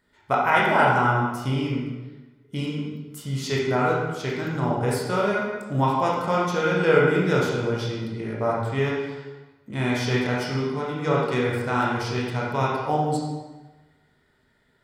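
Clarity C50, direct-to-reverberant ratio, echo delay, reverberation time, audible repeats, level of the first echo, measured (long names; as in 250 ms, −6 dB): 0.0 dB, −5.0 dB, no echo audible, 1.2 s, no echo audible, no echo audible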